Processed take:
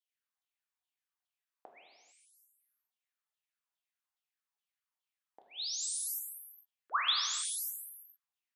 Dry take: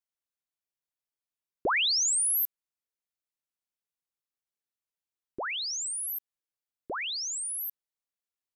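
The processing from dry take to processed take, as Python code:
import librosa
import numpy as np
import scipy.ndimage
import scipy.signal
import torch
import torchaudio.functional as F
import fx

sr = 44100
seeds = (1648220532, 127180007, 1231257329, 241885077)

y = fx.gate_flip(x, sr, shuts_db=-30.0, range_db=-38)
y = fx.filter_lfo_highpass(y, sr, shape='saw_down', hz=2.4, low_hz=700.0, high_hz=3500.0, q=5.4)
y = fx.rev_gated(y, sr, seeds[0], gate_ms=480, shape='falling', drr_db=0.5)
y = y * librosa.db_to_amplitude(-6.5)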